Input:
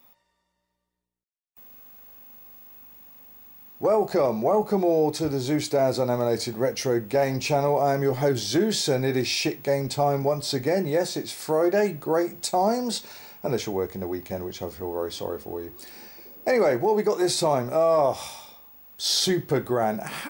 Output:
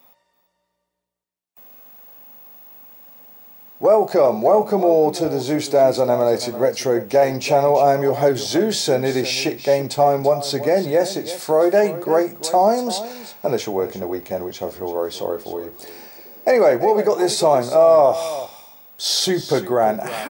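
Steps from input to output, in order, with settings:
high-pass filter 150 Hz 6 dB per octave
parametric band 630 Hz +5.5 dB 0.94 octaves
single-tap delay 335 ms −14 dB
level +3.5 dB

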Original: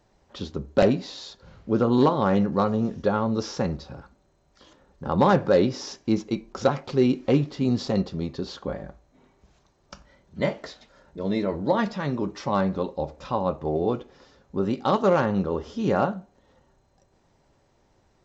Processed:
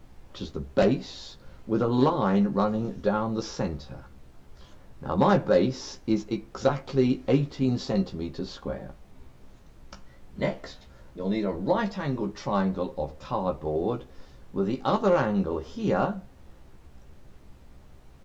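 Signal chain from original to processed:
background noise brown −45 dBFS
double-tracking delay 15 ms −5.5 dB
level −3.5 dB

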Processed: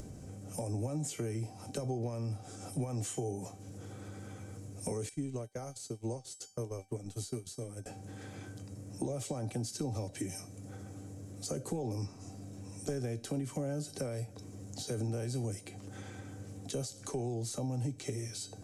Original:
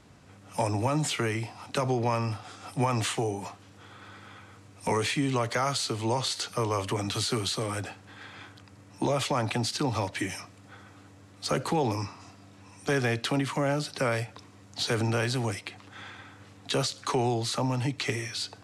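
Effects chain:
downward compressor 6 to 1, threshold −31 dBFS, peak gain reduction 9.5 dB
0:05.09–0:07.86: noise gate −33 dBFS, range −35 dB
flat-topped bell 1,900 Hz −15.5 dB 2.8 octaves
tuned comb filter 780 Hz, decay 0.28 s, mix 80%
upward compression, threshold −51 dBFS
low-shelf EQ 81 Hz +5.5 dB
level +12 dB

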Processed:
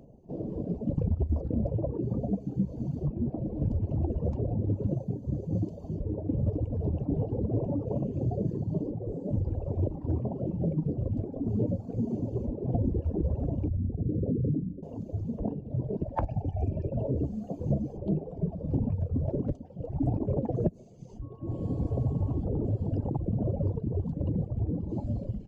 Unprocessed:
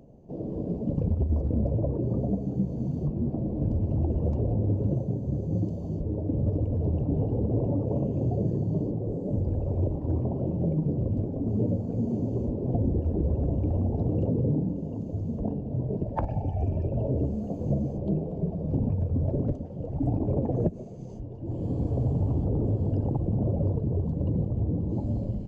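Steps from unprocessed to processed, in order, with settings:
0:13.68–0:14.83: spectral envelope exaggerated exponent 2
reverb reduction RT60 1.5 s
0:21.21–0:22.39: steady tone 1,100 Hz −60 dBFS

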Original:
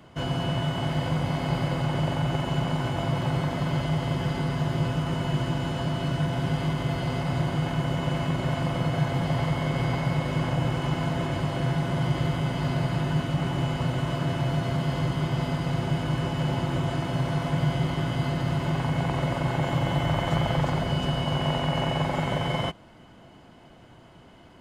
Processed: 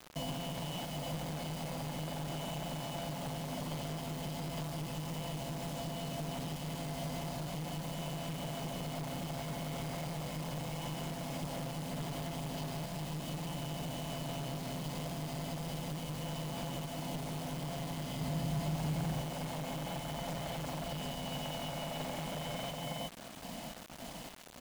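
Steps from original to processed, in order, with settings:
high-shelf EQ 4,600 Hz +7.5 dB
phaser with its sweep stopped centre 380 Hz, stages 6
single-tap delay 370 ms −7 dB
soft clipping −22.5 dBFS, distortion −18 dB
sample-and-hold tremolo
asymmetric clip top −37 dBFS
downward compressor 12 to 1, threshold −44 dBFS, peak gain reduction 14 dB
0:18.21–0:19.22: parametric band 86 Hz +7 dB 3 octaves
bit reduction 9 bits
level +7.5 dB

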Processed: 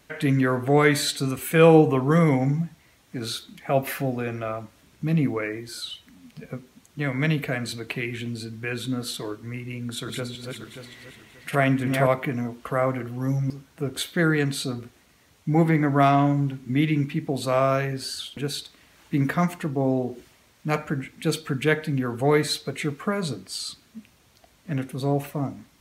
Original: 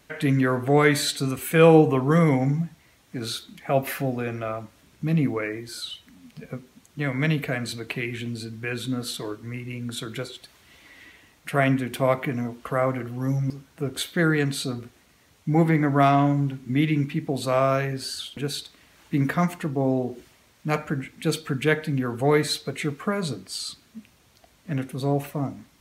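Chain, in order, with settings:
0:09.77–0:12.07: feedback delay that plays each chunk backwards 291 ms, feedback 49%, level −4 dB

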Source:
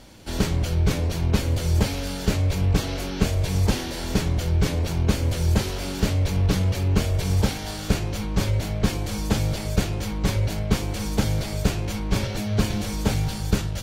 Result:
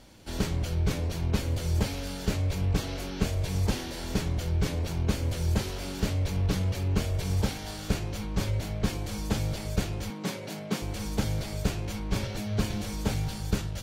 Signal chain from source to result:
0:10.10–0:10.82: Butterworth high-pass 150 Hz 36 dB per octave
level −6 dB

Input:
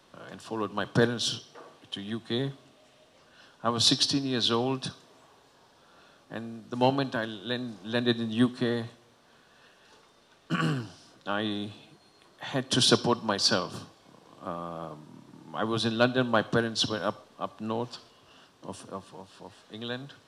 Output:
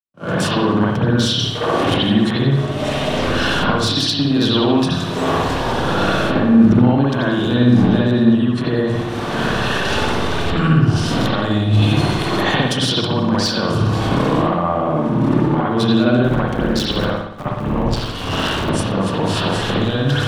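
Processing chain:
0:16.24–0:18.70: sub-harmonics by changed cycles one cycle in 3, muted
camcorder AGC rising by 68 dB per second
downward expander −34 dBFS
low-shelf EQ 240 Hz +10 dB
transient designer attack +1 dB, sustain +8 dB
downward compressor 16 to 1, threshold −21 dBFS, peak gain reduction 11 dB
hard clipping −18.5 dBFS, distortion −20 dB
spring reverb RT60 1 s, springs 57 ms, chirp 35 ms, DRR −7 dB
multiband upward and downward expander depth 70%
level +2 dB

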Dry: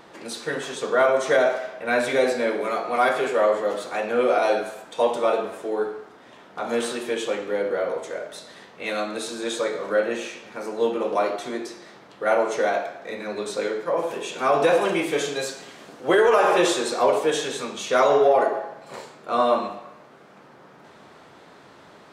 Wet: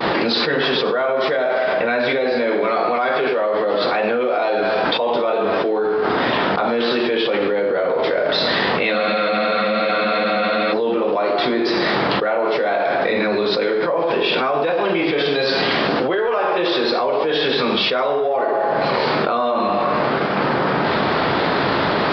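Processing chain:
downward expander −44 dBFS
downsampling to 11,025 Hz
frozen spectrum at 0:08.96, 1.76 s
envelope flattener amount 100%
level −4 dB

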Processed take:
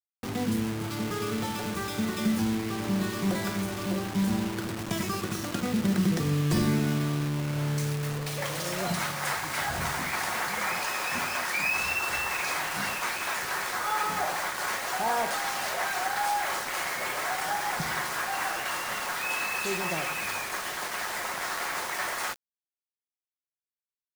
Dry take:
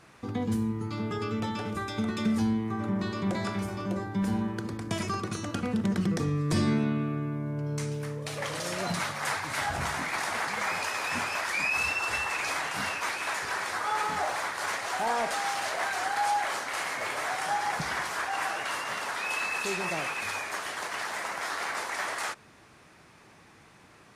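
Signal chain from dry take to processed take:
rectangular room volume 3,700 cubic metres, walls furnished, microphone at 0.96 metres
bit reduction 6 bits

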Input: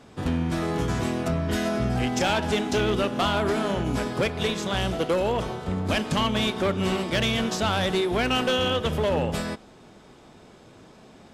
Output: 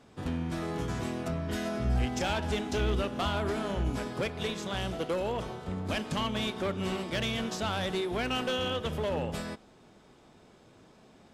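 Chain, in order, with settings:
0:01.84–0:03.90: parametric band 65 Hz +14 dB 0.55 octaves
level −7.5 dB

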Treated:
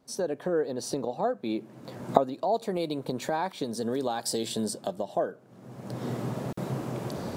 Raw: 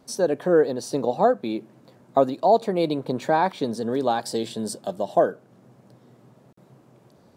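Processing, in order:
camcorder AGC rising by 37 dB per second
0:02.54–0:04.65: high-shelf EQ 5,100 Hz +9.5 dB
level −9.5 dB

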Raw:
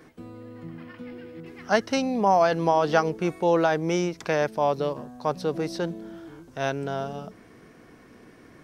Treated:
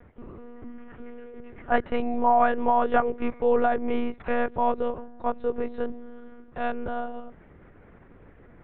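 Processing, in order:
one-pitch LPC vocoder at 8 kHz 240 Hz
low-pass filter 2,000 Hz 12 dB per octave

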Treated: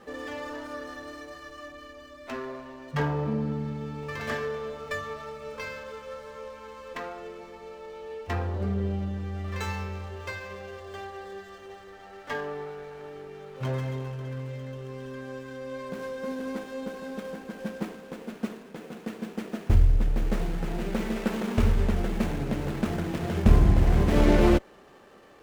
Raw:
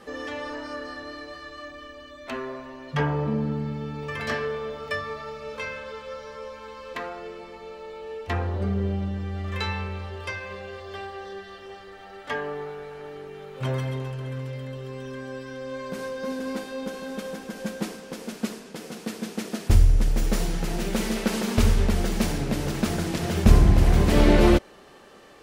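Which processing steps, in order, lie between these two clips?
running median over 9 samples
windowed peak hold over 3 samples
level −2.5 dB

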